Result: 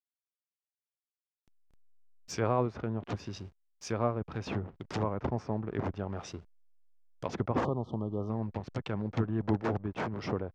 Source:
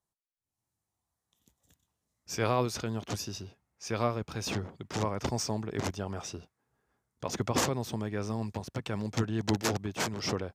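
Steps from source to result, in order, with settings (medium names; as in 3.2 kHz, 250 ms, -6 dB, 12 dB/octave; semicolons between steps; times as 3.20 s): hysteresis with a dead band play -43.5 dBFS; spectral selection erased 7.65–8.29 s, 1.3–2.9 kHz; low-pass that closes with the level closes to 1.4 kHz, closed at -29.5 dBFS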